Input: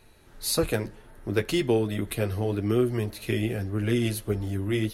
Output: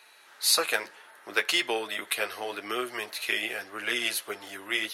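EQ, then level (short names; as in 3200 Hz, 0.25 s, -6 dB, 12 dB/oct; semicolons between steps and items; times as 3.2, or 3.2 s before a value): HPF 980 Hz 12 dB/oct; LPF 3100 Hz 6 dB/oct; tilt +1.5 dB/oct; +8.5 dB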